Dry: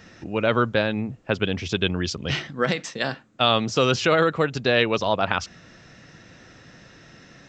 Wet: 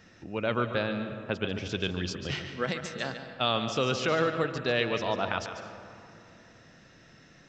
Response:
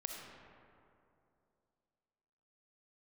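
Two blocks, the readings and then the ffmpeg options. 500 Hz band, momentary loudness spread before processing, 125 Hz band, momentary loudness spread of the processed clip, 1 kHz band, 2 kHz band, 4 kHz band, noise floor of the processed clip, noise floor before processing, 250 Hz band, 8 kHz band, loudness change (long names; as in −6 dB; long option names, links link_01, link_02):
−7.0 dB, 8 LU, −7.0 dB, 10 LU, −7.0 dB, −7.5 dB, −7.5 dB, −56 dBFS, −50 dBFS, −7.0 dB, −7.5 dB, −7.5 dB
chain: -filter_complex "[0:a]asplit=2[link_01][link_02];[1:a]atrim=start_sample=2205,adelay=144[link_03];[link_02][link_03]afir=irnorm=-1:irlink=0,volume=-6.5dB[link_04];[link_01][link_04]amix=inputs=2:normalize=0,volume=-8dB"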